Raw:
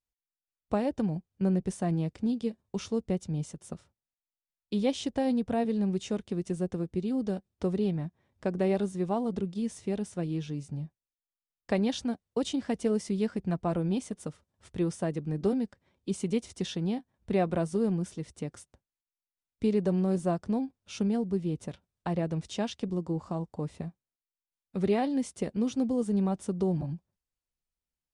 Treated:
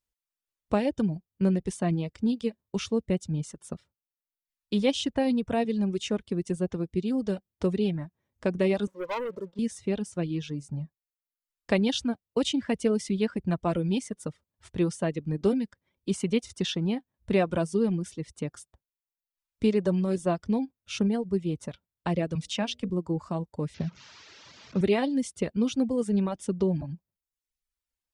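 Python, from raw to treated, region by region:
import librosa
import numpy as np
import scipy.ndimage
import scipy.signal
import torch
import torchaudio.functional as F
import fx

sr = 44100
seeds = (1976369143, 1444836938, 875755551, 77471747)

y = fx.chain(x, sr, fx.double_bandpass(hz=730.0, octaves=0.84),
    fx.leveller(passes=3), at=(8.87, 9.59))
y = fx.chain(y, sr, fx.peak_eq(hz=370.0, db=-14.5, octaves=0.34),
    fx.hum_notches(base_hz=60, count=10),
    fx.band_squash(depth_pct=40), at=(22.35, 22.9))
y = fx.chain(y, sr, fx.delta_mod(bps=32000, step_db=-45.0),
    fx.highpass(hz=87.0, slope=24),
    fx.low_shelf(hz=120.0, db=11.0), at=(23.74, 24.81))
y = fx.dereverb_blind(y, sr, rt60_s=0.92)
y = fx.notch(y, sr, hz=750.0, q=12.0)
y = fx.dynamic_eq(y, sr, hz=2800.0, q=1.2, threshold_db=-53.0, ratio=4.0, max_db=6)
y = F.gain(torch.from_numpy(y), 3.5).numpy()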